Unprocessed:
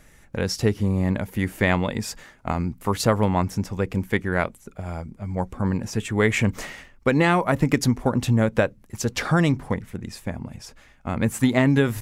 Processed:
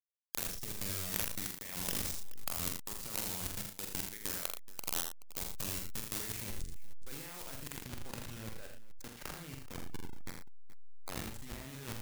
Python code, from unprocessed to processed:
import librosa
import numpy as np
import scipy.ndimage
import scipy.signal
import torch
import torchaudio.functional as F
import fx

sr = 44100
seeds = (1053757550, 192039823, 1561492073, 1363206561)

y = fx.delta_hold(x, sr, step_db=-19.0)
y = F.preemphasis(torch.from_numpy(y), 0.9).numpy()
y = fx.over_compress(y, sr, threshold_db=-42.0, ratio=-1.0)
y = fx.spec_gate(y, sr, threshold_db=-25, keep='strong')
y = fx.high_shelf(y, sr, hz=4000.0, db=fx.steps((0.0, 3.0), (6.4, -2.0), (7.76, -9.5)))
y = fx.echo_multitap(y, sr, ms=(45, 82, 116, 426), db=(-5.0, -6.0, -11.5, -17.5))